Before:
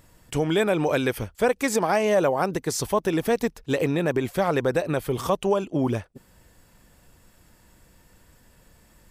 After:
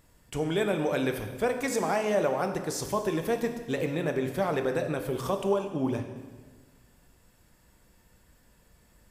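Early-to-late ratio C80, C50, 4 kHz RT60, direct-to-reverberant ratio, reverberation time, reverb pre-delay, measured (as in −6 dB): 9.5 dB, 8.0 dB, 1.2 s, 5.0 dB, 1.4 s, 3 ms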